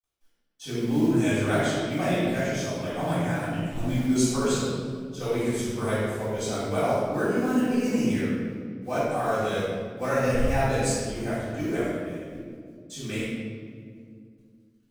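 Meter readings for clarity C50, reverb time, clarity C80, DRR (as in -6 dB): -3.5 dB, 2.1 s, -1.0 dB, -13.5 dB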